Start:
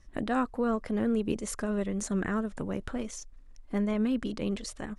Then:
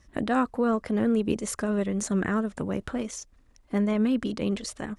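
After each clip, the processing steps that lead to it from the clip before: high-pass 53 Hz 12 dB/octave; trim +4 dB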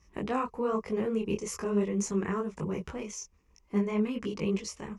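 rippled EQ curve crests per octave 0.78, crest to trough 10 dB; detune thickener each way 39 cents; trim -1.5 dB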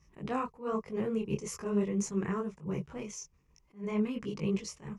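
peaking EQ 140 Hz +12.5 dB 0.4 oct; attacks held to a fixed rise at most 230 dB/s; trim -3 dB

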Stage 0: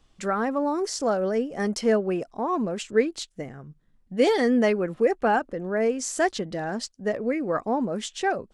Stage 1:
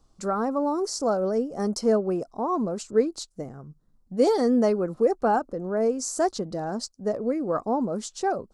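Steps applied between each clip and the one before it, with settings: high-order bell 2.4 kHz -13.5 dB 1.3 oct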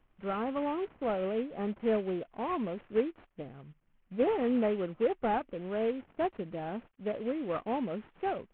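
CVSD coder 16 kbps; trim -7 dB

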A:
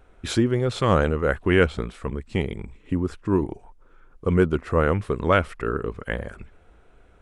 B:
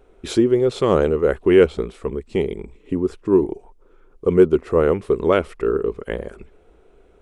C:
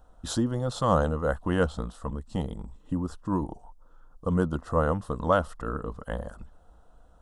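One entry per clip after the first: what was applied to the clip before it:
fifteen-band graphic EQ 100 Hz -8 dB, 400 Hz +10 dB, 1.6 kHz -5 dB
static phaser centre 950 Hz, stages 4

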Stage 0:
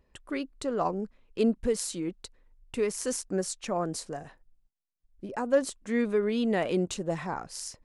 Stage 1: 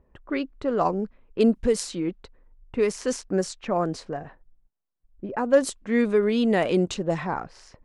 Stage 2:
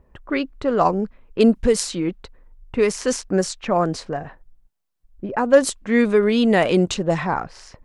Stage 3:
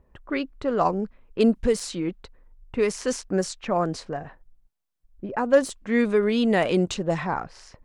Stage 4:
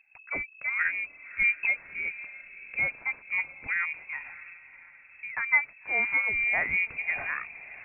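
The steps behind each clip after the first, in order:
level-controlled noise filter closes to 1.2 kHz, open at -22 dBFS; trim +5.5 dB
peaking EQ 340 Hz -3 dB 1.8 oct; trim +7 dB
de-esser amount 45%; trim -4.5 dB
frequency inversion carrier 2.6 kHz; echo that smears into a reverb 600 ms, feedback 46%, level -16 dB; trim -6 dB

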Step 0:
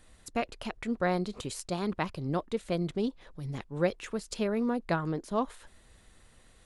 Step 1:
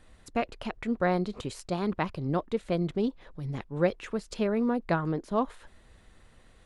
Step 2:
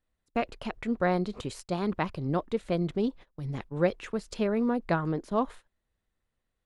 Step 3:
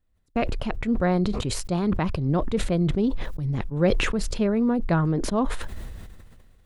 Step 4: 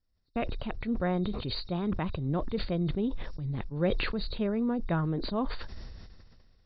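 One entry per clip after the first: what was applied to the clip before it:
treble shelf 5 kHz -11 dB; trim +2.5 dB
gate -43 dBFS, range -25 dB
bass shelf 230 Hz +11 dB; decay stretcher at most 29 dB/s
knee-point frequency compression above 3.6 kHz 4:1; endings held to a fixed fall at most 200 dB/s; trim -7 dB

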